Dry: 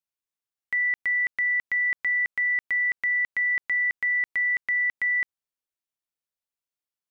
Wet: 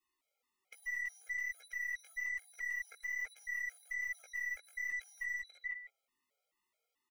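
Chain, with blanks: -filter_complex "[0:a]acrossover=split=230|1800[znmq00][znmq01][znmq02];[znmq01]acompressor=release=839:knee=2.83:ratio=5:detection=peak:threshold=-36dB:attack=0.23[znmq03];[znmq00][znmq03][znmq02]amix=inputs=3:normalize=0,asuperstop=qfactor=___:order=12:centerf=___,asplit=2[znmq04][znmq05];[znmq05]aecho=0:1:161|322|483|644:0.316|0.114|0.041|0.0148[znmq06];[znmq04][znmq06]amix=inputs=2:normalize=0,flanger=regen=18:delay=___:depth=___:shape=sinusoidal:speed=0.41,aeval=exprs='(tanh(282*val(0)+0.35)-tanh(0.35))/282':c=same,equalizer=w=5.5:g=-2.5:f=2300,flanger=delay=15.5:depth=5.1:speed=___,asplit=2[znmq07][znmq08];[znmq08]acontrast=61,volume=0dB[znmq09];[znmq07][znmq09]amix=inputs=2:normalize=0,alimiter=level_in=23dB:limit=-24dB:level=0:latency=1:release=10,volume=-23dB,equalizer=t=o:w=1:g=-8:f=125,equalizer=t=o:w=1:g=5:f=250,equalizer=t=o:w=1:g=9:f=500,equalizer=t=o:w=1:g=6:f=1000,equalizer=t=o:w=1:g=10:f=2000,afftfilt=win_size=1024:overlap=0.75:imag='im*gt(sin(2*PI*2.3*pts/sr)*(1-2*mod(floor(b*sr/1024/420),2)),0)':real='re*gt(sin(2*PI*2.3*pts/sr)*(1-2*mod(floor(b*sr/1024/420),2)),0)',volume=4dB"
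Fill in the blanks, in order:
4.2, 1600, 2.7, 4.9, 1.2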